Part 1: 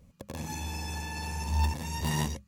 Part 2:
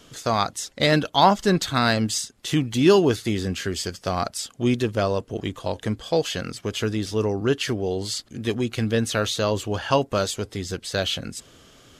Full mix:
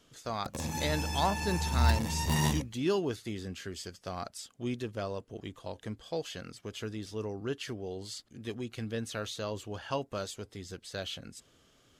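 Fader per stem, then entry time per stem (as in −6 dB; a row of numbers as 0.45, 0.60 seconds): +1.5, −13.5 decibels; 0.25, 0.00 seconds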